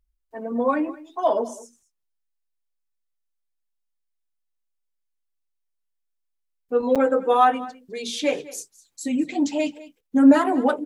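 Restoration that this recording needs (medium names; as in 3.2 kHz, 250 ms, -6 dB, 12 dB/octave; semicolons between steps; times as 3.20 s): interpolate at 6.95 s, 6.7 ms; inverse comb 206 ms -19 dB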